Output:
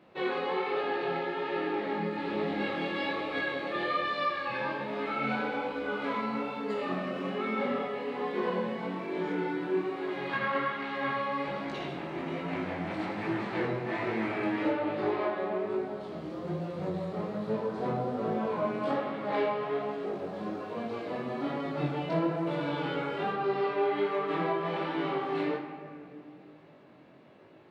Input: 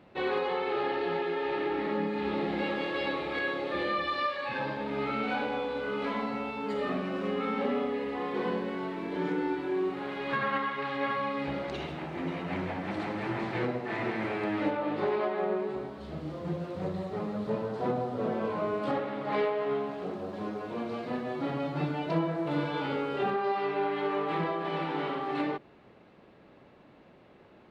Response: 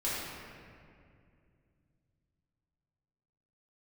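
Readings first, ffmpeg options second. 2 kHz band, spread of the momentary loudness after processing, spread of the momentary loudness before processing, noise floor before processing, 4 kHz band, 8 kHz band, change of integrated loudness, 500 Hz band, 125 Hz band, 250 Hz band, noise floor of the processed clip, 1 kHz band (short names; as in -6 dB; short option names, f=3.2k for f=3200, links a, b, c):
+0.5 dB, 6 LU, 5 LU, -56 dBFS, -0.5 dB, n/a, 0.0 dB, -0.5 dB, -1.0 dB, -0.5 dB, -52 dBFS, 0.0 dB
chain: -filter_complex "[0:a]highpass=110,asplit=2[a][b];[1:a]atrim=start_sample=2205[c];[b][c]afir=irnorm=-1:irlink=0,volume=-9.5dB[d];[a][d]amix=inputs=2:normalize=0,flanger=delay=18.5:depth=4.8:speed=1.2"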